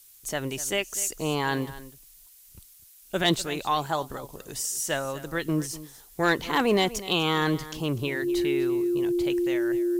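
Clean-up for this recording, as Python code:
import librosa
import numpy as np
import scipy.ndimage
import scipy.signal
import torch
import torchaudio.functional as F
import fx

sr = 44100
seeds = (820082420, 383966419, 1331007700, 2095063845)

y = fx.fix_declip(x, sr, threshold_db=-13.5)
y = fx.notch(y, sr, hz=350.0, q=30.0)
y = fx.noise_reduce(y, sr, print_start_s=2.63, print_end_s=3.13, reduce_db=20.0)
y = fx.fix_echo_inverse(y, sr, delay_ms=248, level_db=-16.5)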